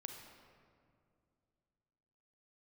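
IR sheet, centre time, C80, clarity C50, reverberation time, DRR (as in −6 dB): 55 ms, 5.5 dB, 4.0 dB, 2.4 s, 3.0 dB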